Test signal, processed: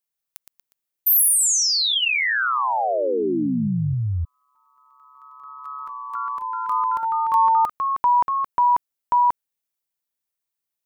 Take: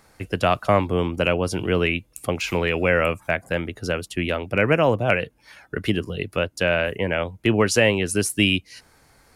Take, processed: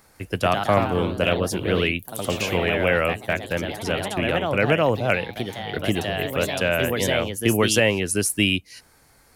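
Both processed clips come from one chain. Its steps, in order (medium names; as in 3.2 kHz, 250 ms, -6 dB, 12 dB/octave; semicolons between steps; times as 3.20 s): treble shelf 10 kHz +9.5 dB; ever faster or slower copies 155 ms, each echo +2 st, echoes 3, each echo -6 dB; trim -1.5 dB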